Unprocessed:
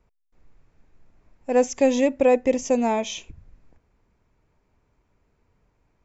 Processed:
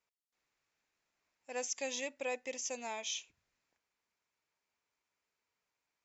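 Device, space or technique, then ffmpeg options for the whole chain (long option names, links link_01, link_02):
piezo pickup straight into a mixer: -af "lowpass=5700,aderivative,volume=1dB"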